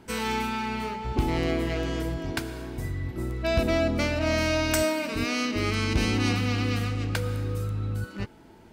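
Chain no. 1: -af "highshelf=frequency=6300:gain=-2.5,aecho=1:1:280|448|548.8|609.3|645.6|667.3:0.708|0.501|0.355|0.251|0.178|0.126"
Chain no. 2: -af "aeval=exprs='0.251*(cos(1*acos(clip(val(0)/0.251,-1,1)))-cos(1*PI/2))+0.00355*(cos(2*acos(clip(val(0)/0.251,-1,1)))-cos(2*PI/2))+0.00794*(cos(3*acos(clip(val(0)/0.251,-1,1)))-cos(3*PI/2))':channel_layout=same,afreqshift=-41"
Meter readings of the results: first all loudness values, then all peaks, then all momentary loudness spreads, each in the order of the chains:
−24.5, −29.0 LKFS; −9.0, −11.0 dBFS; 9, 10 LU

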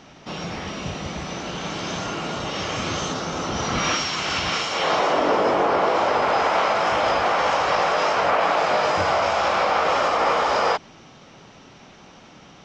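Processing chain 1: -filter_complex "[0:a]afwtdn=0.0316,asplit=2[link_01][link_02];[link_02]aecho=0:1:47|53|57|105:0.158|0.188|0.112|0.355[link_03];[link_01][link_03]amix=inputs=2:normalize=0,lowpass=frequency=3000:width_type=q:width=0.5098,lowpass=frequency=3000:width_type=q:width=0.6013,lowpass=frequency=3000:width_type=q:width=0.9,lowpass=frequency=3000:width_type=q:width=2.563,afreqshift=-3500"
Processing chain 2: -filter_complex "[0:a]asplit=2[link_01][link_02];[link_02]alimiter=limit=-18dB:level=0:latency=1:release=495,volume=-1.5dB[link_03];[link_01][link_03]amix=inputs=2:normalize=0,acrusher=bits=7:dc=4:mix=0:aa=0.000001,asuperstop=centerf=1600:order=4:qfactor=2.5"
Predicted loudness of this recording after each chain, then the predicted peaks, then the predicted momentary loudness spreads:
−18.5, −19.5 LKFS; −7.0, −6.5 dBFS; 12, 8 LU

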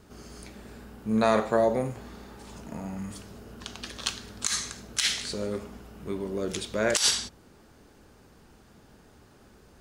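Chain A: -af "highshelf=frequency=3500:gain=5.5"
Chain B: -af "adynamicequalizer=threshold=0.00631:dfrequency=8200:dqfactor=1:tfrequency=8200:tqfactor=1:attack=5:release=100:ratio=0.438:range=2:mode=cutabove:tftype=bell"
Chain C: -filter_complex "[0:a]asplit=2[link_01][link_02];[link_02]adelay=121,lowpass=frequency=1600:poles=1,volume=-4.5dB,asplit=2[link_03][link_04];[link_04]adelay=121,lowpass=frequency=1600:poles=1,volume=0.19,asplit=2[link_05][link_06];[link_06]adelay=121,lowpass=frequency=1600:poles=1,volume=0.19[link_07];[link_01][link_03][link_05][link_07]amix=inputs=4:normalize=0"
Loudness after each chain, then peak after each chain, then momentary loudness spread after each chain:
−26.0, −28.5, −28.0 LKFS; −2.0, −5.5, −5.5 dBFS; 22, 22, 21 LU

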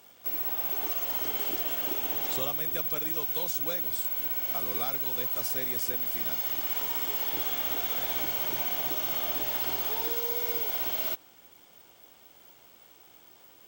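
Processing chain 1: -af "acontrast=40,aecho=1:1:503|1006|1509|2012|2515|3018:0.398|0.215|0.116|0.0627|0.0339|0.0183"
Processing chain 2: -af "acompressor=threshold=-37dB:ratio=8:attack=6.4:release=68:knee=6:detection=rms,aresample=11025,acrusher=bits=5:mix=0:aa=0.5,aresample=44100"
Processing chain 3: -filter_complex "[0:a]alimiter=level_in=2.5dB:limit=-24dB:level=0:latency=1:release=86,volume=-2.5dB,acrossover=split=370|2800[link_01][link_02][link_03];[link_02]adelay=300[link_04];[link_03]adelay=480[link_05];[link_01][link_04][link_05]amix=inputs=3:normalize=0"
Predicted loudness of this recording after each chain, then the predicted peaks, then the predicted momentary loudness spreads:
−24.5, −56.5, −31.5 LKFS; −13.5, −29.0, −24.5 dBFS; 11, 10, 1 LU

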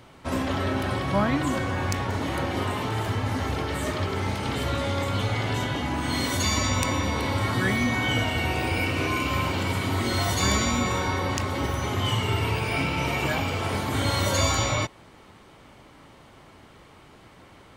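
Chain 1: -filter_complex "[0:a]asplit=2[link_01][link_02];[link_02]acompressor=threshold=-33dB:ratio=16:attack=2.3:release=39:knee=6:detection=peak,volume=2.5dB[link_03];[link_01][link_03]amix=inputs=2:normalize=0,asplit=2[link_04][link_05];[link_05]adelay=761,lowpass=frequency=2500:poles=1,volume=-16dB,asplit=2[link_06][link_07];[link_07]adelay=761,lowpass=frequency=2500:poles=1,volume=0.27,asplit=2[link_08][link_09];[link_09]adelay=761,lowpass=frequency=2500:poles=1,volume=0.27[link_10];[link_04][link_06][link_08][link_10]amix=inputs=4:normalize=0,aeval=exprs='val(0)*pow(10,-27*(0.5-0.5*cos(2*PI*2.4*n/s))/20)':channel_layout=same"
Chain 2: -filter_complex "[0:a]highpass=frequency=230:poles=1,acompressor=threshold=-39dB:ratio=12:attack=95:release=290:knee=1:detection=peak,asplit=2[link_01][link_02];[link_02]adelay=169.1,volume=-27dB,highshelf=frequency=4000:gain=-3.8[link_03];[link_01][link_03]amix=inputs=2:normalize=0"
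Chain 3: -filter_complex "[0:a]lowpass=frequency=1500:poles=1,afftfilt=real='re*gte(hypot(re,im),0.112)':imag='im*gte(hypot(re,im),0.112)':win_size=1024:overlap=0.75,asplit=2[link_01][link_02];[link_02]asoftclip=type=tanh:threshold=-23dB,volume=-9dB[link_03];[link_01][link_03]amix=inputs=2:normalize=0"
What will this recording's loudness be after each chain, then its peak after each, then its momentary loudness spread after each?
−29.0, −38.0, −27.0 LKFS; −9.0, −18.5, −10.5 dBFS; 5, 15, 4 LU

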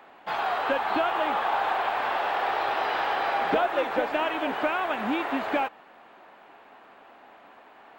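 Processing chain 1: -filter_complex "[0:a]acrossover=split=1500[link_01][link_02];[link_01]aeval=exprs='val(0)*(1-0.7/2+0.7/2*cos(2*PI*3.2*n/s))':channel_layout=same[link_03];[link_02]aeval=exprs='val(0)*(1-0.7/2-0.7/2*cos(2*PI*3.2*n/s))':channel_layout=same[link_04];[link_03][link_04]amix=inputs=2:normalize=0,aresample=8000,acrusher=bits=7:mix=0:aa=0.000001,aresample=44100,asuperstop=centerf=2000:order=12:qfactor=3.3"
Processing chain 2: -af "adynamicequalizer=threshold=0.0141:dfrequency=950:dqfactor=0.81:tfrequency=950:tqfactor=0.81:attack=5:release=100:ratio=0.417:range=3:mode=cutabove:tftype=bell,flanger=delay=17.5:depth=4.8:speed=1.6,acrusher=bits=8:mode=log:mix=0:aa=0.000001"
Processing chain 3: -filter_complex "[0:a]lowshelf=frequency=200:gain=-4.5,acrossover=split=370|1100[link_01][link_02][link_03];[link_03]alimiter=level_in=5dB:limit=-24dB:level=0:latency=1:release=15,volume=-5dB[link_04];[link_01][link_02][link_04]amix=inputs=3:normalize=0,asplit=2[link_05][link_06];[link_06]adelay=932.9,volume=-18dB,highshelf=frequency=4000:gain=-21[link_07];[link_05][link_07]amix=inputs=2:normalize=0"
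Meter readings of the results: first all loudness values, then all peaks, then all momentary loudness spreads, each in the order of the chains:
−30.5, −33.0, −28.0 LKFS; −16.0, −19.0, −14.0 dBFS; 3, 3, 20 LU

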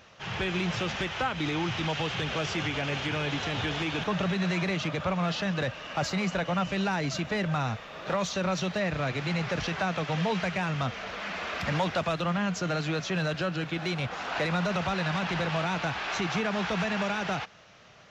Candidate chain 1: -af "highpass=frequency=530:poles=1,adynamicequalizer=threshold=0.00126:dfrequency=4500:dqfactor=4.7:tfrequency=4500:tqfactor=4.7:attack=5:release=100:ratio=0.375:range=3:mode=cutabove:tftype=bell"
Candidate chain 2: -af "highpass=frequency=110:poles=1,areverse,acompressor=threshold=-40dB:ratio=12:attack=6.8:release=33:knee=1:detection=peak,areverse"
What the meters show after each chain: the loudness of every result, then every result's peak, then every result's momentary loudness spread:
−32.5, −40.5 LKFS; −18.5, −28.5 dBFS; 3, 1 LU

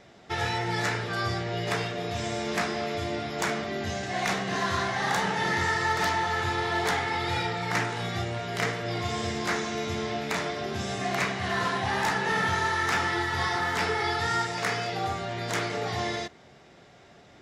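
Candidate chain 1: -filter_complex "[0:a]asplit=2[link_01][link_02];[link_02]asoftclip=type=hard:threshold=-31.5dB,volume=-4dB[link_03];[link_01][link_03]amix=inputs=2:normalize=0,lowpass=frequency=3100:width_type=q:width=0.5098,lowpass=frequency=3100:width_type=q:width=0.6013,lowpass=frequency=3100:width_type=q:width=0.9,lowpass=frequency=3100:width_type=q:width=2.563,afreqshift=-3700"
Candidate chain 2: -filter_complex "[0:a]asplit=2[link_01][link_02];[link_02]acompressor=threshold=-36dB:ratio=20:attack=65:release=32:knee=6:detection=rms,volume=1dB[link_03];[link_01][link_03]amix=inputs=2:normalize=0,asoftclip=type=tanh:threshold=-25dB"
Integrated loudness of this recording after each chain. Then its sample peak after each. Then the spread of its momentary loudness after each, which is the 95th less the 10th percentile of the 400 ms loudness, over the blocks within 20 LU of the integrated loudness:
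−24.0, −28.5 LKFS; −12.0, −25.0 dBFS; 4, 3 LU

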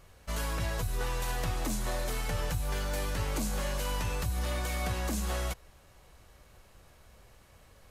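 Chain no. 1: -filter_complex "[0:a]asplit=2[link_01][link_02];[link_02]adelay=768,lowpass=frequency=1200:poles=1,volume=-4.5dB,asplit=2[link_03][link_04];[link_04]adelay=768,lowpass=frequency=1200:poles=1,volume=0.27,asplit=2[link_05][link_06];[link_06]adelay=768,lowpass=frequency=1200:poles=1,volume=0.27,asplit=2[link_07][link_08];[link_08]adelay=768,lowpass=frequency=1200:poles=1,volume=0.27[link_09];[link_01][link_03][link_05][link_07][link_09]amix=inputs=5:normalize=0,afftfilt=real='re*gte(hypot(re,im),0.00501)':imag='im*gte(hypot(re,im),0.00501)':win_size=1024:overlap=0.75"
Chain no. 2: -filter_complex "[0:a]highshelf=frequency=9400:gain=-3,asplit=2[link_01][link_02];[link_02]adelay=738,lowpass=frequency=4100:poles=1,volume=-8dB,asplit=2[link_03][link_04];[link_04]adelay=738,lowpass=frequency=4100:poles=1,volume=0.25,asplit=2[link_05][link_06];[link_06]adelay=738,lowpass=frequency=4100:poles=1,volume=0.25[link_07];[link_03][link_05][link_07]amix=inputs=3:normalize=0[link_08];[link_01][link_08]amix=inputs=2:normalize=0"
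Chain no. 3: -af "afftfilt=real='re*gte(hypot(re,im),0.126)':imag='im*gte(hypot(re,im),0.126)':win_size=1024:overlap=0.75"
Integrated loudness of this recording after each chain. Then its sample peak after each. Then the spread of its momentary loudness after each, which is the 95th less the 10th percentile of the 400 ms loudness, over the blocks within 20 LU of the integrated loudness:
−34.0, −34.0, −37.5 LKFS; −20.5, −21.0, −24.0 dBFS; 11, 12, 4 LU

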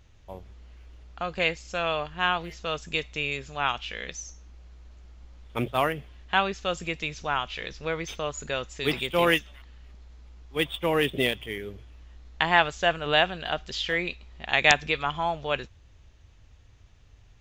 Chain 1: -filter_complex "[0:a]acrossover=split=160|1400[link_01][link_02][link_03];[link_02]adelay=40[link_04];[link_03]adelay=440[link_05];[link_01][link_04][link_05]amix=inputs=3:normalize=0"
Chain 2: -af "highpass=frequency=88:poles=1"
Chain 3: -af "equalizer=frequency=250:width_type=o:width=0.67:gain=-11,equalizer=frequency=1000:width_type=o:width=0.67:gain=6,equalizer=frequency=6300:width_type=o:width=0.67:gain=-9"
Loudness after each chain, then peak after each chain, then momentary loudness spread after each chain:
−28.5, −27.0, −26.5 LKFS; −2.5, −2.5, −1.5 dBFS; 13, 14, 15 LU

